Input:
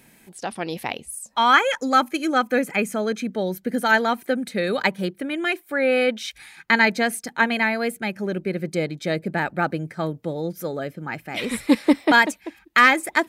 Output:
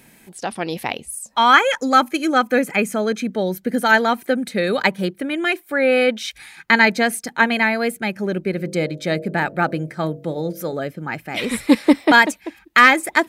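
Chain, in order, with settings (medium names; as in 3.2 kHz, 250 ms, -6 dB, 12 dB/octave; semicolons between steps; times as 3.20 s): 8.51–10.73 s: de-hum 47.56 Hz, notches 14; trim +3.5 dB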